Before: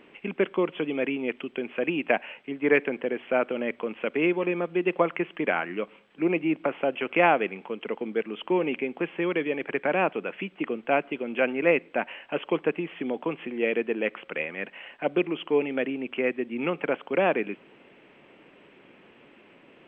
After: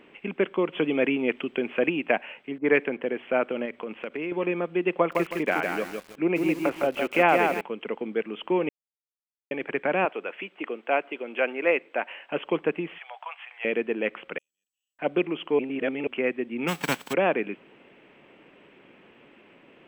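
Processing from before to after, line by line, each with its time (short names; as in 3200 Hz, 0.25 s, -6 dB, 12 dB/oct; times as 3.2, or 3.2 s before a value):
0.73–1.89 gain +4 dB
2.58–3.01 low-pass opened by the level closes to 380 Hz, open at -18.5 dBFS
3.65–4.32 compressor 4:1, threshold -29 dBFS
4.95–7.61 lo-fi delay 0.159 s, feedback 35%, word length 7-bit, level -4 dB
8.69–9.51 mute
10.05–12.31 HPF 380 Hz
12.98–13.65 steep high-pass 700 Hz 48 dB/oct
14.38–14.99 inverse Chebyshev high-pass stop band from 2300 Hz, stop band 60 dB
15.59–16.07 reverse
16.67–17.12 spectral whitening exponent 0.3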